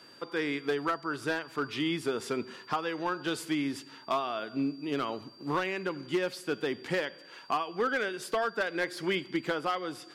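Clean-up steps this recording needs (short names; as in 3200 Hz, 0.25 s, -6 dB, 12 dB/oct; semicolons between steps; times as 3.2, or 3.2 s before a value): clip repair -22 dBFS; notch 4700 Hz, Q 30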